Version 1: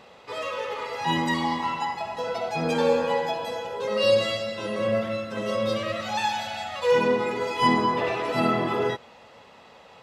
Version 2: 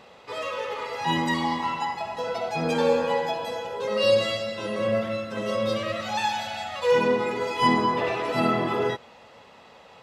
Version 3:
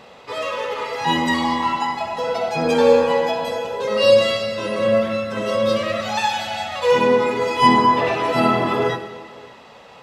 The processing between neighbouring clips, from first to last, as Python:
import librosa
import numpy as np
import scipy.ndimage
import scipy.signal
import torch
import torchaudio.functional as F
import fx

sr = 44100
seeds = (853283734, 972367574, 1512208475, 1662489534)

y1 = x
y2 = y1 + 10.0 ** (-23.5 / 20.0) * np.pad(y1, (int(577 * sr / 1000.0), 0))[:len(y1)]
y2 = fx.rev_gated(y2, sr, seeds[0], gate_ms=480, shape='falling', drr_db=9.0)
y2 = F.gain(torch.from_numpy(y2), 5.5).numpy()